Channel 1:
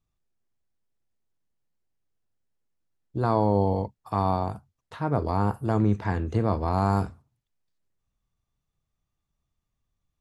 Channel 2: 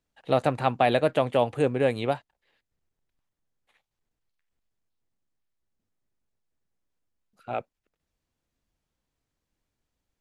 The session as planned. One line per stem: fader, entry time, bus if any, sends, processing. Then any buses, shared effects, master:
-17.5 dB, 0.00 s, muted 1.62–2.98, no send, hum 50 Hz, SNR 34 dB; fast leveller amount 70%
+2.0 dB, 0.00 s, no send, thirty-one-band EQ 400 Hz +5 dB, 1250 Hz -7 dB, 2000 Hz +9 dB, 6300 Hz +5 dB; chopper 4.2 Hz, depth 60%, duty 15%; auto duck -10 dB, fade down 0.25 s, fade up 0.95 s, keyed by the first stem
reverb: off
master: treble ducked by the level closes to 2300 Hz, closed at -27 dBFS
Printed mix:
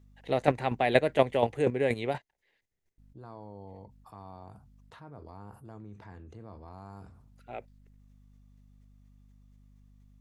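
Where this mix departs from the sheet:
stem 1 -17.5 dB -> -25.5 dB; master: missing treble ducked by the level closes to 2300 Hz, closed at -27 dBFS

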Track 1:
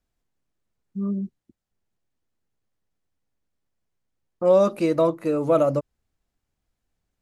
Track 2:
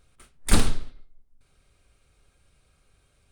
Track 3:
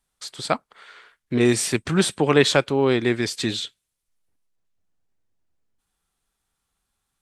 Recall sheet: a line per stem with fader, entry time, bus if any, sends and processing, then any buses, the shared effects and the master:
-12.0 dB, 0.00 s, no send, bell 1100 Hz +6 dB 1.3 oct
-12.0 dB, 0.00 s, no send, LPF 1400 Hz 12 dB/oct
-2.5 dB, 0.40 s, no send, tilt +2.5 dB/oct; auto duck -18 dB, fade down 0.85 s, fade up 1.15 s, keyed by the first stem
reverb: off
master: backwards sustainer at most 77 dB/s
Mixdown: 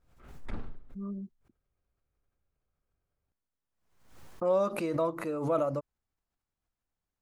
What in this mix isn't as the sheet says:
stem 2 -12.0 dB -> -19.5 dB; stem 3: muted

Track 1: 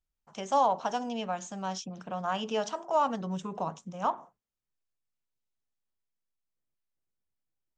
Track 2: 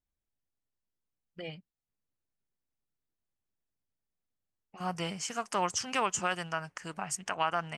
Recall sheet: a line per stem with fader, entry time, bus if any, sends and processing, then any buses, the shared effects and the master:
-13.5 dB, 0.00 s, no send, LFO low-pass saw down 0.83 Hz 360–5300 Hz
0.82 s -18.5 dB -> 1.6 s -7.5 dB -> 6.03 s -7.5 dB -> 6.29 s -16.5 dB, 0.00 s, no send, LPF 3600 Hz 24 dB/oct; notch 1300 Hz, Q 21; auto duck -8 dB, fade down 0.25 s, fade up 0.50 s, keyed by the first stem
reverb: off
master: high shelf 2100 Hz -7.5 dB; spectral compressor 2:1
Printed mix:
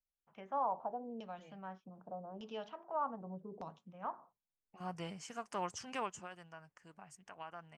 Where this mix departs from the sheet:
stem 2: missing LPF 3600 Hz 24 dB/oct; master: missing spectral compressor 2:1

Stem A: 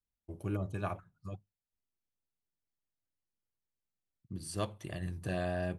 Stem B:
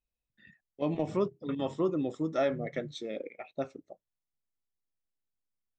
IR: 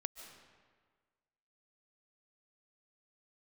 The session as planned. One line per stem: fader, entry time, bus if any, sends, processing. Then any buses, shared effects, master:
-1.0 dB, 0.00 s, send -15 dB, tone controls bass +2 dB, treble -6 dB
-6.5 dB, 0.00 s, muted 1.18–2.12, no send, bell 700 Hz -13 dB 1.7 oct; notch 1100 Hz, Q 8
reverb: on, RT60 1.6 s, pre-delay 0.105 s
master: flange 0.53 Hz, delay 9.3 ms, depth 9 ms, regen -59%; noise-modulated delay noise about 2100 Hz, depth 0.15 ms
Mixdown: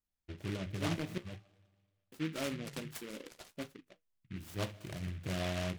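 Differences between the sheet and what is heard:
stem A: send -15 dB -> -8.5 dB; stem B -6.5 dB -> +3.0 dB

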